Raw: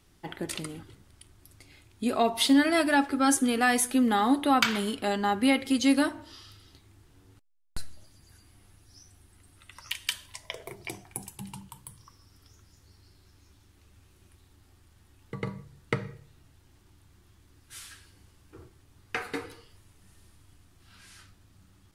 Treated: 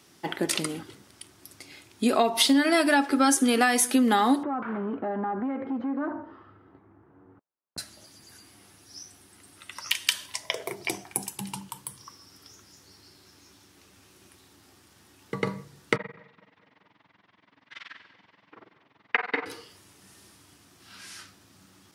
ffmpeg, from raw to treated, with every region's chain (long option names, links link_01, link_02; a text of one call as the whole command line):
ffmpeg -i in.wav -filter_complex "[0:a]asettb=1/sr,asplit=3[link_01][link_02][link_03];[link_01]atrim=end=4.434[link_04];[link_02]atrim=start=4.43:end=7.78,asetpts=PTS-STARTPTS,afade=type=in:duration=0.004:curve=qsin,afade=type=out:start_time=3.346:duration=0.004:curve=qsin,acompressor=threshold=-29dB:ratio=12:attack=3.2:release=140:knee=1:detection=peak,asoftclip=type=hard:threshold=-33dB,lowpass=frequency=1400:width=0.5412,lowpass=frequency=1400:width=1.3066[link_05];[link_03]atrim=start=7.776[link_06];[link_04][link_05]acrossfade=duration=0.004:curve1=hsin:curve2=qsin[link_07];[link_07][link_06]acrossfade=duration=0.004:curve1=qsin:curve2=hsin,asettb=1/sr,asplit=3[link_08][link_09][link_10];[link_08]atrim=end=15.964[link_11];[link_09]atrim=start=15.96:end=19.46,asetpts=PTS-STARTPTS,afade=type=in:duration=0.004:curve=qsin,afade=type=out:start_time=3.496:duration=0.004:curve=qsin,tremolo=f=21:d=1,highpass=170,equalizer=frequency=360:width_type=q:width=4:gain=-8,equalizer=frequency=640:width_type=q:width=4:gain=4,equalizer=frequency=980:width_type=q:width=4:gain=7,equalizer=frequency=2000:width_type=q:width=4:gain=7,lowpass=frequency=3400:width=0.5412,lowpass=frequency=3400:width=1.3066,aecho=1:1:211|422|633|844:0.133|0.068|0.0347|0.0177,atrim=end_sample=154350[link_12];[link_10]atrim=start=19.456[link_13];[link_11][link_12]acrossfade=duration=0.004:curve1=hsin:curve2=qsin[link_14];[link_14][link_13]acrossfade=duration=0.004:curve1=qsin:curve2=hsin,highpass=200,equalizer=frequency=5500:width_type=o:width=0.43:gain=4,acompressor=threshold=-26dB:ratio=6,volume=8dB" out.wav